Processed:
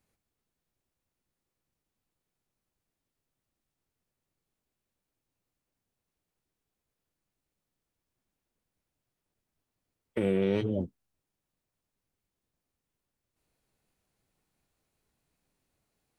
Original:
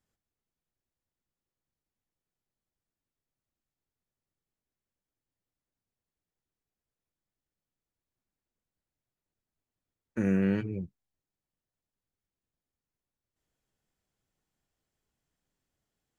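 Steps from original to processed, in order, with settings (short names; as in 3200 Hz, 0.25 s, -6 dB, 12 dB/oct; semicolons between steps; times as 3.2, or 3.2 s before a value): limiter -24 dBFS, peak gain reduction 7.5 dB; formant shift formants +5 st; gain +5 dB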